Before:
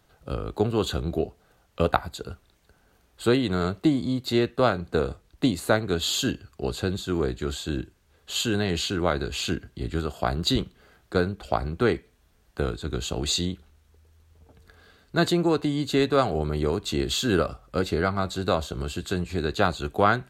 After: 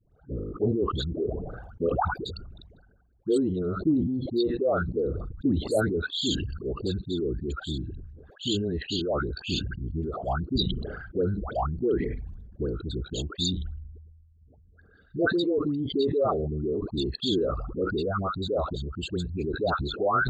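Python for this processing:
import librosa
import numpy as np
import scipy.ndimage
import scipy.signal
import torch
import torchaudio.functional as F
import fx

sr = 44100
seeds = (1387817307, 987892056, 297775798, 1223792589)

y = fx.envelope_sharpen(x, sr, power=3.0)
y = fx.dispersion(y, sr, late='highs', ms=124.0, hz=890.0)
y = fx.sustainer(y, sr, db_per_s=40.0)
y = y * 10.0 ** (-3.5 / 20.0)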